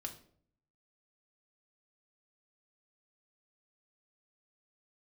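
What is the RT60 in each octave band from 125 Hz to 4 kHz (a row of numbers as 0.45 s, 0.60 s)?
0.90 s, 0.75 s, 0.65 s, 0.50 s, 0.40 s, 0.40 s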